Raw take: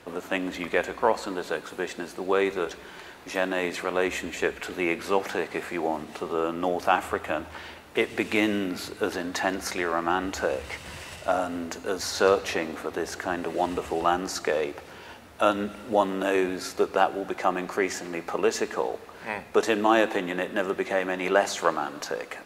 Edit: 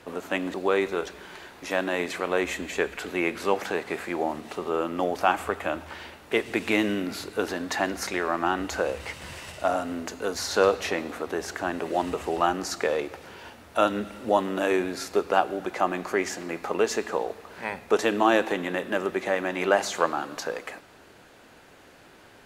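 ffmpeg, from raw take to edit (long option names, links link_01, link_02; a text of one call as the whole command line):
ffmpeg -i in.wav -filter_complex "[0:a]asplit=2[link_01][link_02];[link_01]atrim=end=0.542[link_03];[link_02]atrim=start=2.178[link_04];[link_03][link_04]acrossfade=duration=0.004:curve1=hsin:curve2=hsin" out.wav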